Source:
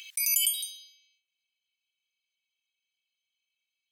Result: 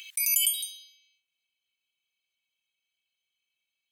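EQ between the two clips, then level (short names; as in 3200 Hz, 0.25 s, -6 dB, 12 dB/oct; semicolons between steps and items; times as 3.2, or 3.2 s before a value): bell 5300 Hz -4.5 dB 0.5 oct; +1.5 dB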